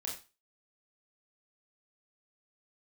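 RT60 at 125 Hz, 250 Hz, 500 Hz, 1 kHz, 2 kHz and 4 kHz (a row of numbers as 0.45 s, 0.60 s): 0.30 s, 0.30 s, 0.30 s, 0.30 s, 0.30 s, 0.30 s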